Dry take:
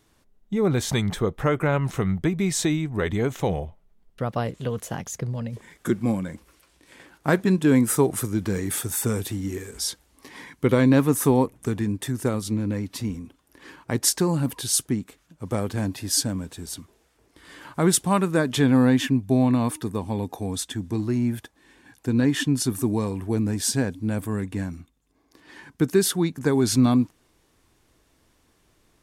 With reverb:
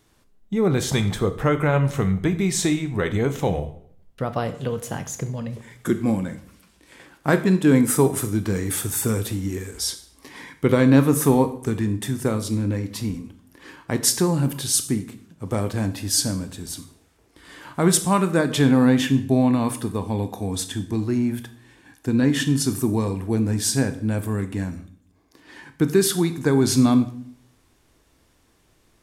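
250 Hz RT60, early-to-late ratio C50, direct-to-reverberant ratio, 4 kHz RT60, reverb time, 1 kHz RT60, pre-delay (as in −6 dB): 0.70 s, 13.0 dB, 9.5 dB, 0.50 s, 0.60 s, 0.55 s, 16 ms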